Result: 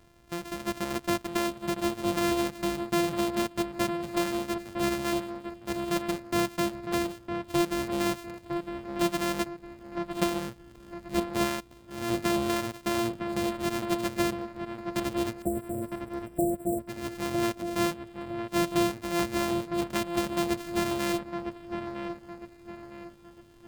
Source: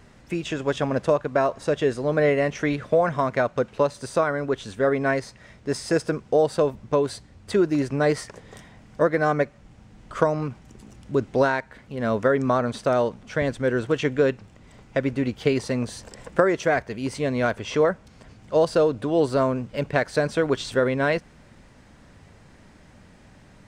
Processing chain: sample sorter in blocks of 128 samples; 15.42–16.89 brick-wall FIR band-stop 780–7400 Hz; dark delay 0.958 s, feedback 36%, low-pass 2500 Hz, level -6.5 dB; gain -8 dB

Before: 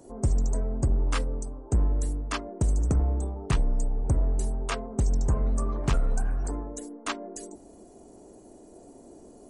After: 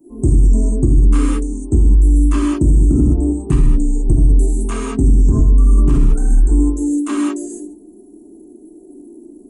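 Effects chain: per-bin expansion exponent 1.5; EQ curve 170 Hz 0 dB, 320 Hz +9 dB, 530 Hz -15 dB, 1100 Hz -8 dB, 1600 Hz -13 dB, 2700 Hz -12 dB, 5200 Hz -18 dB, 8300 Hz -4 dB; non-linear reverb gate 0.23 s flat, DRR -6 dB; maximiser +14.5 dB; gain -3.5 dB

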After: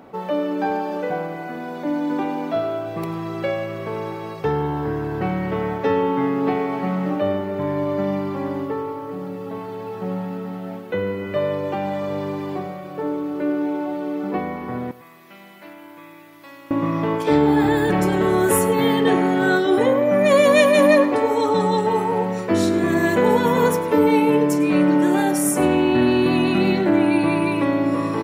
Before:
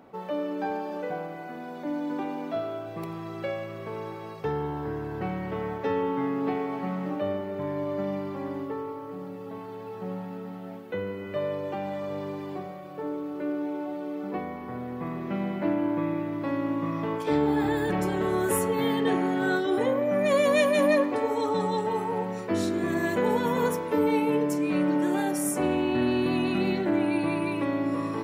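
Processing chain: 14.91–16.71 pre-emphasis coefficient 0.97; on a send: echo 0.103 s -17.5 dB; on the sum: gain +8 dB

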